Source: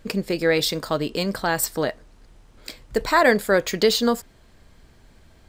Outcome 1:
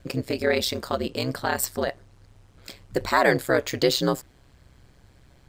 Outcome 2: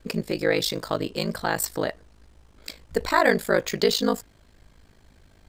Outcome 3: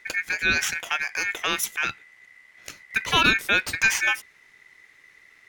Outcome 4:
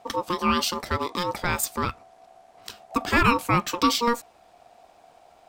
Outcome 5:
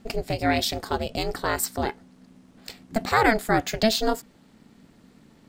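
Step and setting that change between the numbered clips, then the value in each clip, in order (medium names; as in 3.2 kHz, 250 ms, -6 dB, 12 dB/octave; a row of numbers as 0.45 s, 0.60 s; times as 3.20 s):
ring modulator, frequency: 65 Hz, 26 Hz, 2 kHz, 710 Hz, 220 Hz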